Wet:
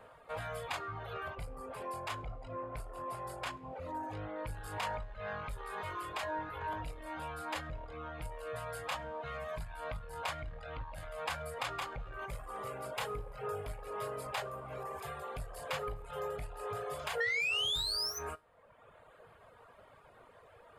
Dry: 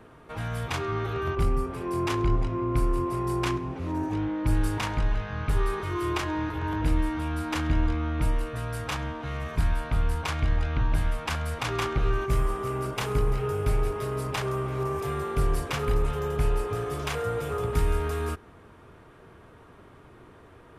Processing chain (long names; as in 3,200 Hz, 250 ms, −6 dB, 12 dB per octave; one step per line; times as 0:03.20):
sound drawn into the spectrogram rise, 0:17.20–0:18.19, 1,800–6,200 Hz −22 dBFS
soft clipping −20.5 dBFS, distortion −15 dB
downward compressor, threshold −28 dBFS, peak gain reduction 5.5 dB
low shelf with overshoot 430 Hz −7.5 dB, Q 3
notch filter 5,800 Hz, Q 5.6
tuned comb filter 52 Hz, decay 0.27 s, harmonics all, mix 70%
reverb reduction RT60 1.2 s
level +1 dB